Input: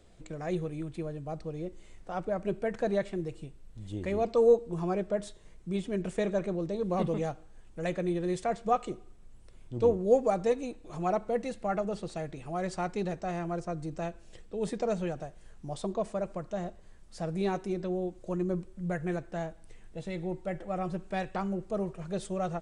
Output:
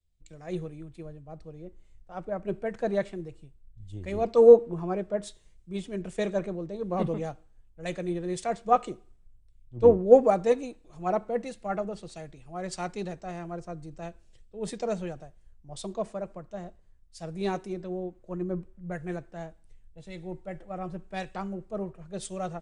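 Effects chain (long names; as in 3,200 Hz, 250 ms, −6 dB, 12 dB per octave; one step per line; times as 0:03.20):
multiband upward and downward expander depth 100%
level −1 dB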